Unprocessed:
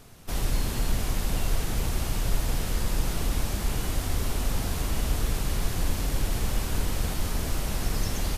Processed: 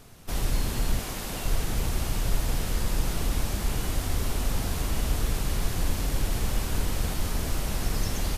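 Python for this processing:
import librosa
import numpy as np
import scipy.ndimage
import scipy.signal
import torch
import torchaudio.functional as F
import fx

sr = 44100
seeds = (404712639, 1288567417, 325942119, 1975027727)

y = fx.low_shelf(x, sr, hz=130.0, db=-12.0, at=(0.99, 1.45))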